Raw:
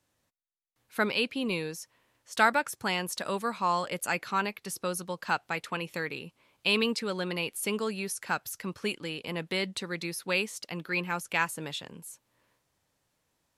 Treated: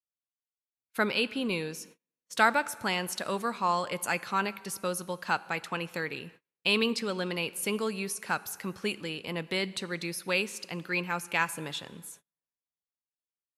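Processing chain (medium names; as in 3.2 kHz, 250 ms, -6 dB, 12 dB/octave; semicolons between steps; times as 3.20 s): plate-style reverb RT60 1.8 s, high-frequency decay 0.8×, DRR 17.5 dB; gate -51 dBFS, range -35 dB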